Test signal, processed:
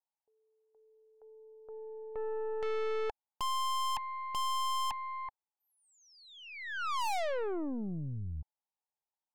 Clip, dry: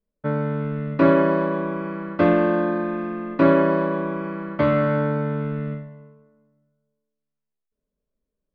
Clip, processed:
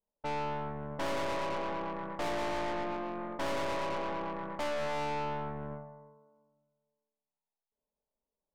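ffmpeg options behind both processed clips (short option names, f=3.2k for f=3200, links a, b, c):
-af "lowpass=f=860:t=q:w=6.5,lowshelf=f=380:g=-9,aeval=exprs='(tanh(31.6*val(0)+0.65)-tanh(0.65))/31.6':c=same,volume=-3dB"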